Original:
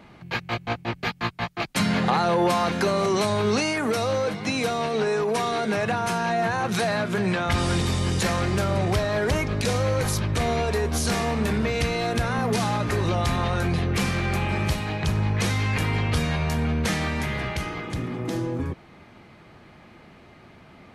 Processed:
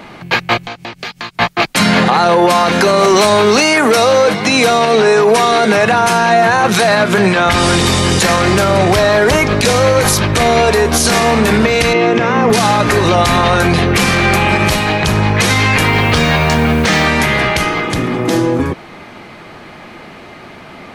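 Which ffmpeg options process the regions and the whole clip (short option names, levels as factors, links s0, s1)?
-filter_complex "[0:a]asettb=1/sr,asplit=3[s0][s1][s2];[s0]atrim=end=0.634[s3];[s1]atrim=start=0.63:end=1.36,asetpts=PTS-STARTPTS,afade=t=in:d=0.004:c=qsin,afade=t=out:st=0.726:d=0.004:c=qsin,equalizer=f=5600:w=0.58:g=7.5,acompressor=threshold=0.0112:ratio=6:attack=3.2:release=140:knee=1:detection=peak[s4];[s2]atrim=start=1.356[s5];[s3][s4]acrossfade=d=0.004:c1=hsin:c2=qsin[s6];[s6][s5]acrossfade=d=0.004:c1=qsin:c2=hsin,asettb=1/sr,asplit=3[s7][s8][s9];[s7]atrim=end=3.004[s10];[s8]atrim=start=3:end=4.29,asetpts=PTS-STARTPTS,afade=t=in:d=0.004:c=qsin,afade=t=out:st=1.286:d=0.004:c=qsin,highpass=f=140:p=1,volume=7.5,asoftclip=hard,volume=0.133[s11];[s9]atrim=start=4.286[s12];[s10][s11]acrossfade=d=0.004:c1=hsin:c2=qsin[s13];[s13][s12]acrossfade=d=0.004:c1=qsin:c2=hsin,asettb=1/sr,asplit=3[s14][s15][s16];[s14]atrim=end=11.934[s17];[s15]atrim=start=11.93:end=12.5,asetpts=PTS-STARTPTS,afade=t=in:d=0.004:c=qsin,afade=t=out:st=0.566:d=0.004:c=qsin,acrossover=split=3700[s18][s19];[s19]acompressor=threshold=0.00355:ratio=4:attack=1:release=60[s20];[s18][s20]amix=inputs=2:normalize=0,highpass=f=130:w=0.5412,highpass=f=130:w=1.3066,equalizer=f=360:t=q:w=4:g=6,equalizer=f=720:t=q:w=4:g=-5,equalizer=f=1500:t=q:w=4:g=-6,equalizer=f=4100:t=q:w=4:g=-10,lowpass=f=6600:w=0.5412,lowpass=f=6600:w=1.3066[s21];[s16]atrim=start=12.496[s22];[s17][s21]acrossfade=d=0.004:c1=hsin:c2=qsin[s23];[s23][s22]acrossfade=d=0.004:c1=qsin:c2=hsin,asettb=1/sr,asplit=3[s24][s25][s26];[s24]atrim=end=15.874[s27];[s25]atrim=start=15.87:end=17.05,asetpts=PTS-STARTPTS,afade=t=in:d=0.004:c=qsin,afade=t=out:st=1.176:d=0.004:c=qsin,lowpass=6400,acrusher=bits=7:mix=0:aa=0.5[s28];[s26]atrim=start=17.046[s29];[s27][s28]acrossfade=d=0.004:c1=hsin:c2=qsin[s30];[s30][s29]acrossfade=d=0.004:c1=qsin:c2=hsin,equalizer=f=67:w=0.4:g=-10,alimiter=level_in=8.41:limit=0.891:release=50:level=0:latency=1,volume=0.891"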